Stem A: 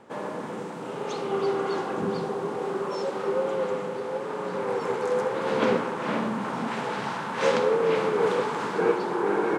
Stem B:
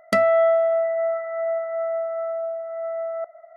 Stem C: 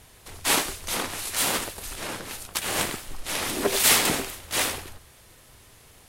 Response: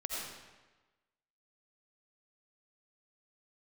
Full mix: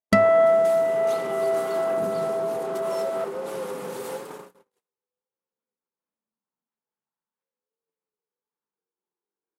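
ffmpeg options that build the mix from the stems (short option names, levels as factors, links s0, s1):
-filter_complex "[0:a]alimiter=limit=0.0841:level=0:latency=1:release=120,volume=0.794,afade=t=out:st=4.14:d=0.58:silence=0.266073[s0];[1:a]bass=f=250:g=12,treble=f=4000:g=0,volume=1[s1];[2:a]highpass=f=130:w=0.5412,highpass=f=130:w=1.3066,acrossover=split=1400|5800[s2][s3][s4];[s2]acompressor=threshold=0.00891:ratio=4[s5];[s3]acompressor=threshold=0.00562:ratio=4[s6];[s4]acompressor=threshold=0.0112:ratio=4[s7];[s5][s6][s7]amix=inputs=3:normalize=0,asplit=2[s8][s9];[s9]adelay=4,afreqshift=0.54[s10];[s8][s10]amix=inputs=2:normalize=1,adelay=200,volume=0.473[s11];[s0][s1][s11]amix=inputs=3:normalize=0,agate=range=0.00251:threshold=0.0178:ratio=16:detection=peak"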